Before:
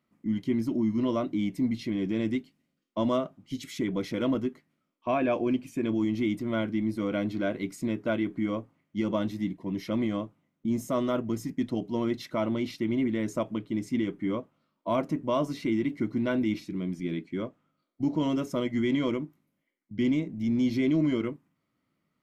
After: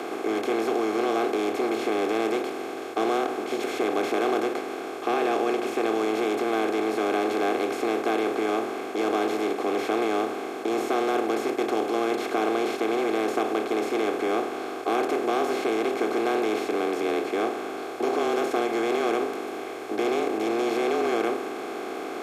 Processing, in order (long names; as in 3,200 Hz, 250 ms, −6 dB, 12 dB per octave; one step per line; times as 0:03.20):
compressor on every frequency bin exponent 0.2
frequency shifter +110 Hz
every ending faded ahead of time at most 150 dB per second
level −5 dB